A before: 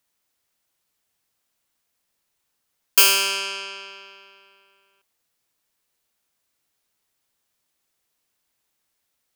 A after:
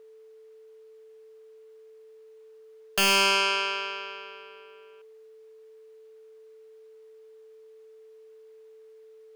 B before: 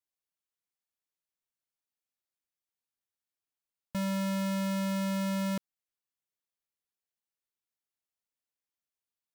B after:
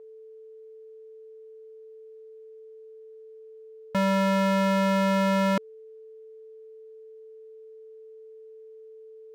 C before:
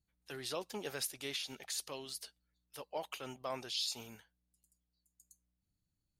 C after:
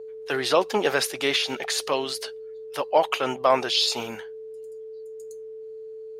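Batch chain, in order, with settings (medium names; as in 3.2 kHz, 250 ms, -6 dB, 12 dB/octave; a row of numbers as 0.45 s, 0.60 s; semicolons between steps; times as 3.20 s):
whistle 440 Hz -56 dBFS; overdrive pedal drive 22 dB, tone 1.2 kHz, clips at -1.5 dBFS; normalise loudness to -24 LUFS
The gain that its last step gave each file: -3.0 dB, +1.5 dB, +9.5 dB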